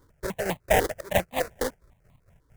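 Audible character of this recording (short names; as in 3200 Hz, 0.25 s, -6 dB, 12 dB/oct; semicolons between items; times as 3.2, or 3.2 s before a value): chopped level 4.4 Hz, depth 60%, duty 50%; aliases and images of a low sample rate 1200 Hz, jitter 20%; notches that jump at a steady rate 10 Hz 690–1500 Hz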